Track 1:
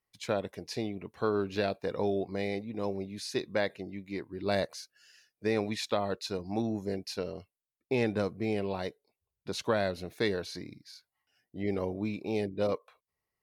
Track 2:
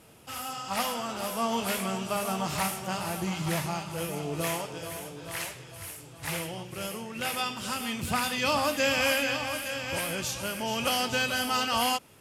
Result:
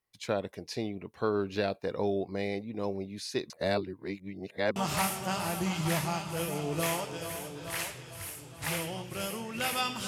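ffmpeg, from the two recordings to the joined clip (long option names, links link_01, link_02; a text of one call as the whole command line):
ffmpeg -i cue0.wav -i cue1.wav -filter_complex "[0:a]apad=whole_dur=10.07,atrim=end=10.07,asplit=2[link_01][link_02];[link_01]atrim=end=3.502[link_03];[link_02]atrim=start=3.498:end=4.762,asetpts=PTS-STARTPTS,areverse[link_04];[1:a]atrim=start=2.368:end=7.68[link_05];[link_03][link_04]acrossfade=duration=0.004:curve1=hsin:curve2=hsin[link_06];[link_06][link_05]acrossfade=duration=0.004:curve1=hsin:curve2=hsin" out.wav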